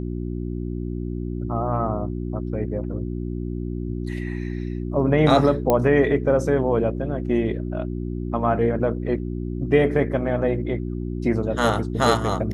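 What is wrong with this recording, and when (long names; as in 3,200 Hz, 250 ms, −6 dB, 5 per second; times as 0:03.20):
mains hum 60 Hz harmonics 6 −28 dBFS
0:05.70: click −7 dBFS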